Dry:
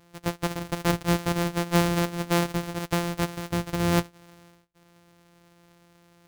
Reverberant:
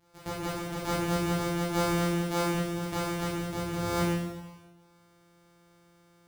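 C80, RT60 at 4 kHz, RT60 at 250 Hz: 2.0 dB, 1.1 s, 1.2 s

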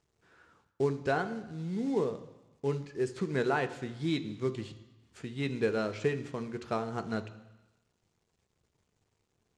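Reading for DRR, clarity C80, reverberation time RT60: 8.0 dB, 15.5 dB, 1.0 s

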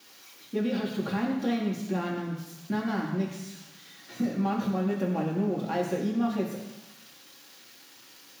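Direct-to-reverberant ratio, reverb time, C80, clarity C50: -3.5 dB, 1.1 s, 6.5 dB, 4.5 dB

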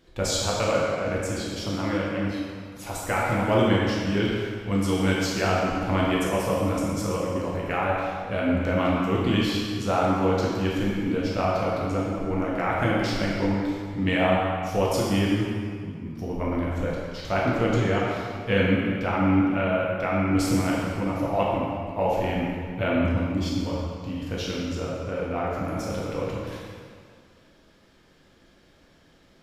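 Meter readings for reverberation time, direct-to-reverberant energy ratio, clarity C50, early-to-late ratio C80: 2.0 s, -5.0 dB, -1.5 dB, 0.5 dB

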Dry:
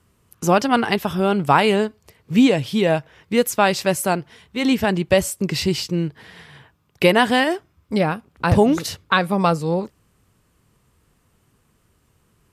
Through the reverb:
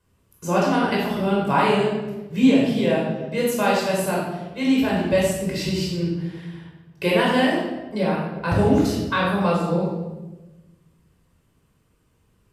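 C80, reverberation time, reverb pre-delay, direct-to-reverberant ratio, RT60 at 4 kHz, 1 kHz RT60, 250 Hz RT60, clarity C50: 4.0 dB, 1.1 s, 16 ms, -5.0 dB, 0.80 s, 1.0 s, 1.6 s, 0.5 dB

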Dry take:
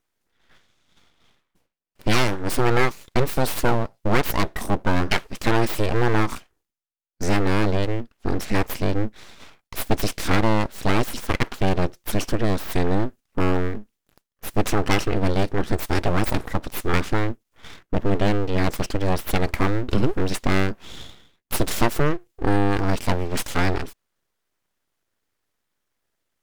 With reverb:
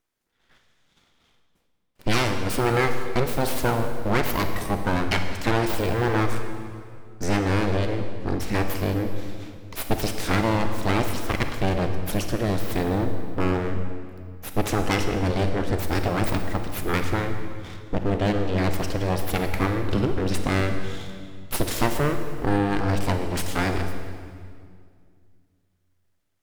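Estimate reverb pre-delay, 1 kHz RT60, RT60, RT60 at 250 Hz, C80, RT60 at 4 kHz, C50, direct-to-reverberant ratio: 29 ms, 2.0 s, 2.1 s, 2.7 s, 8.0 dB, 1.8 s, 6.5 dB, 6.0 dB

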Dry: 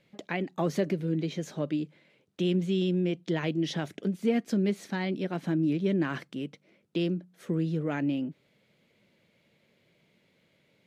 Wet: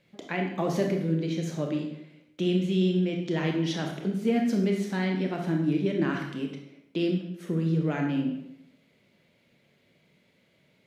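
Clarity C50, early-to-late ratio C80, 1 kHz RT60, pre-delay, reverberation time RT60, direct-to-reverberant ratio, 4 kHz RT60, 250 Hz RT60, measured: 5.0 dB, 8.0 dB, 0.80 s, 24 ms, 0.80 s, 1.5 dB, 0.65 s, 0.85 s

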